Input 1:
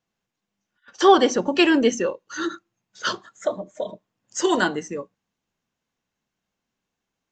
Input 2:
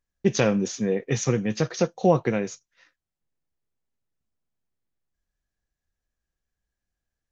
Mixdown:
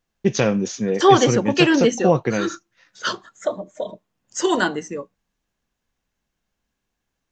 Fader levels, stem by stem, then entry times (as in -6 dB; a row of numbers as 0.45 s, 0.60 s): +1.0 dB, +2.5 dB; 0.00 s, 0.00 s